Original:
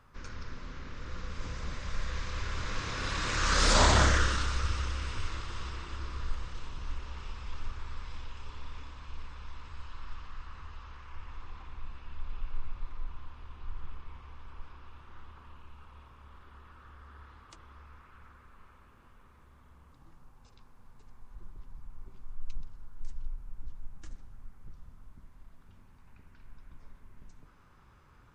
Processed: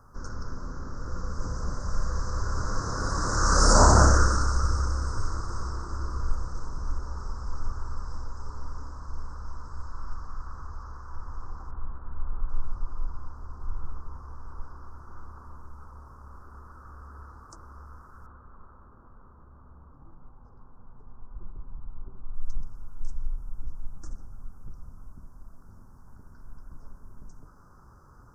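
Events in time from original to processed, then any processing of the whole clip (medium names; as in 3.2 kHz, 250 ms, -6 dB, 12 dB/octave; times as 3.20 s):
11.71–14.11 s: bands offset in time lows, highs 780 ms, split 2.7 kHz
18.26–22.36 s: low-pass 1.6 kHz
whole clip: Chebyshev band-stop 1.4–5.4 kHz, order 3; de-hum 79.33 Hz, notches 27; trim +7 dB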